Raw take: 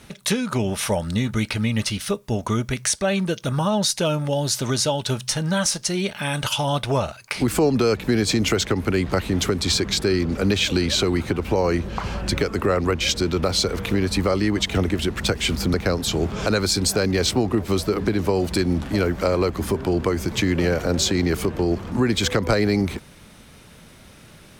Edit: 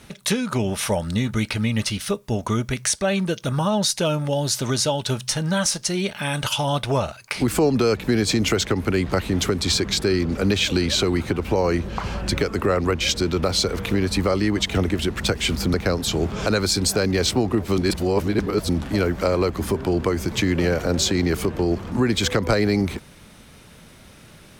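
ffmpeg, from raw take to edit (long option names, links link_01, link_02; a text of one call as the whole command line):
ffmpeg -i in.wav -filter_complex "[0:a]asplit=3[link_01][link_02][link_03];[link_01]atrim=end=17.782[link_04];[link_02]atrim=start=17.778:end=18.692,asetpts=PTS-STARTPTS,areverse[link_05];[link_03]atrim=start=18.688[link_06];[link_04][link_05]acrossfade=duration=0.004:curve1=hsin:curve2=hsin[link_07];[link_07][link_06]acrossfade=duration=0.004:curve1=hsin:curve2=hsin" out.wav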